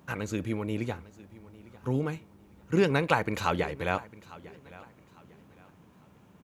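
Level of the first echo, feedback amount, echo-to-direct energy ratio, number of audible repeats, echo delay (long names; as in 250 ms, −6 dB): −20.0 dB, 32%, −19.5 dB, 2, 852 ms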